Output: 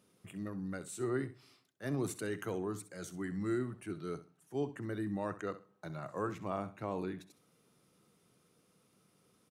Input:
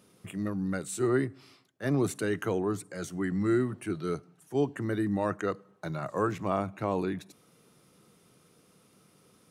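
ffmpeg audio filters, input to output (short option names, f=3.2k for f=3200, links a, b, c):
-filter_complex "[0:a]asettb=1/sr,asplit=3[a][b][c];[a]atrim=end=1.254[d];[b]atrim=start=1.25:end=3.59,asetpts=PTS-STARTPTS,afade=t=in:d=0.004:c=qsin,afade=t=out:st=2.336:d=0.004:c=qsin,highshelf=f=5k:g=5[e];[c]atrim=start=3.586[f];[d][e]acrossfade=d=0.004:c1=hsin:c2=qsin[g];[g][f]acrossfade=d=0.004:c1=qsin:c2=hsin,aecho=1:1:65|130:0.188|0.0414,volume=-8.5dB"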